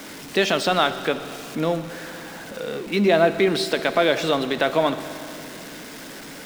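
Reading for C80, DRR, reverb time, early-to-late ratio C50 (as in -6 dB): 12.0 dB, 10.0 dB, 2.9 s, 11.0 dB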